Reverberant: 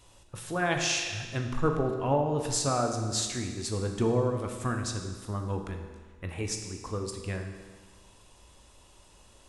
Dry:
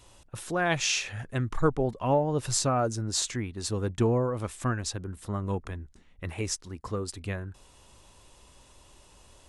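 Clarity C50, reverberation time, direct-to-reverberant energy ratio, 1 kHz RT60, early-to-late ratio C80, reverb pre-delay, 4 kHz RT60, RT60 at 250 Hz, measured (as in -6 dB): 6.0 dB, 1.5 s, 3.5 dB, 1.5 s, 7.5 dB, 15 ms, 1.4 s, 1.5 s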